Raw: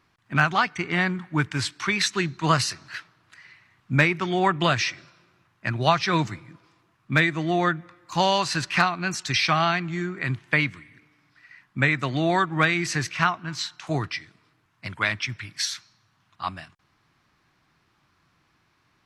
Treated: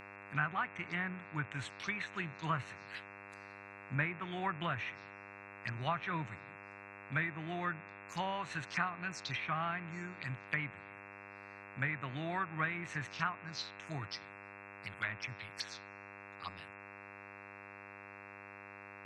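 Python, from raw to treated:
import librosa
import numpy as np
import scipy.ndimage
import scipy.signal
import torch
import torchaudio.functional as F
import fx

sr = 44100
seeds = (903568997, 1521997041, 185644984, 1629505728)

y = fx.env_phaser(x, sr, low_hz=360.0, high_hz=4900.0, full_db=-23.0)
y = fx.tone_stack(y, sr, knobs='5-5-5')
y = fx.env_lowpass_down(y, sr, base_hz=1800.0, full_db=-33.0)
y = fx.dmg_buzz(y, sr, base_hz=100.0, harmonics=27, level_db=-53.0, tilt_db=0, odd_only=False)
y = y * 10.0 ** (1.0 / 20.0)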